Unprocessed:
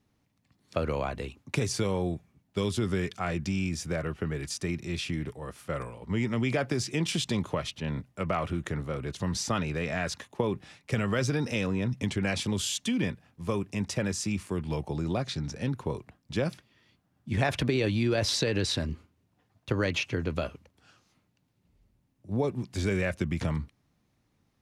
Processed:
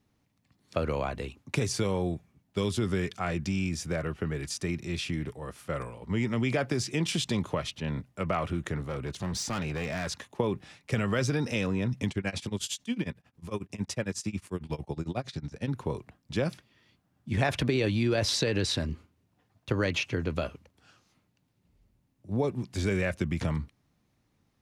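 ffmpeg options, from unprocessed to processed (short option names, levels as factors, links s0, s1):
-filter_complex "[0:a]asettb=1/sr,asplit=3[s0][s1][s2];[s0]atrim=end=8.774[s3];[s1]atrim=start=8.77:end=10.1,asetpts=PTS-STARTPTS,afade=t=in:d=0.004:c=qsin,afade=t=out:st=1.326:d=0.004:c=qsin,asoftclip=type=hard:threshold=0.0376[s4];[s2]atrim=start=10.096[s5];[s3][s4]acrossfade=d=0.004:c1=hsin:c2=qsin[s6];[s6][s5]acrossfade=d=0.004:c1=qsin:c2=hsin,asplit=3[s7][s8][s9];[s7]afade=t=out:st=12.09:d=0.02[s10];[s8]tremolo=f=11:d=0.94,afade=t=in:st=12.09:d=0.02,afade=t=out:st=15.67:d=0.02[s11];[s9]afade=t=in:st=15.67:d=0.02[s12];[s10][s11][s12]amix=inputs=3:normalize=0"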